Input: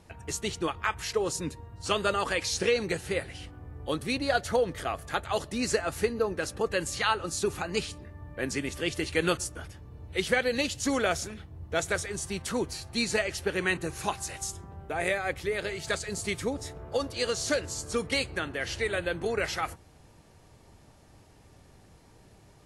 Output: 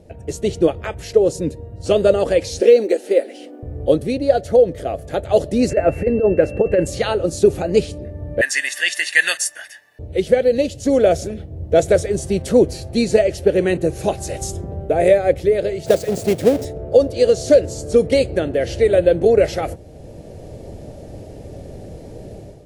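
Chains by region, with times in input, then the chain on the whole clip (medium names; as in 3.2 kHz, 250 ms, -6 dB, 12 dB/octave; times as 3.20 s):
2.60–3.63 s: brick-wall FIR high-pass 210 Hz + short-mantissa float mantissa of 4-bit
5.69–6.85 s: compressor with a negative ratio -28 dBFS, ratio -0.5 + whistle 2.7 kHz -38 dBFS + FFT filter 1 kHz 0 dB, 2.2 kHz +4 dB, 3.5 kHz -15 dB
8.41–9.99 s: resonant high-pass 1.7 kHz, resonance Q 5.2 + peaking EQ 10 kHz +7 dB 2.1 oct + comb 1.1 ms, depth 58%
15.86–16.65 s: square wave that keeps the level + Bessel high-pass 150 Hz
whole clip: resonant low shelf 780 Hz +10 dB, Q 3; level rider; trim -1 dB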